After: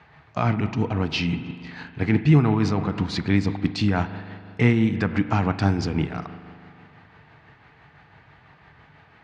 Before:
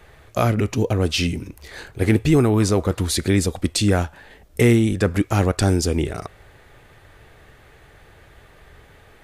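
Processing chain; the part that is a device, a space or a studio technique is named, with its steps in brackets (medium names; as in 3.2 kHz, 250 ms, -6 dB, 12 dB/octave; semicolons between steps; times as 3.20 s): combo amplifier with spring reverb and tremolo (spring tank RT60 2.4 s, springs 40 ms, chirp 65 ms, DRR 10 dB; tremolo 6 Hz, depth 35%; cabinet simulation 110–4400 Hz, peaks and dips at 150 Hz +7 dB, 380 Hz -8 dB, 540 Hz -10 dB, 920 Hz +5 dB, 3.5 kHz -6 dB)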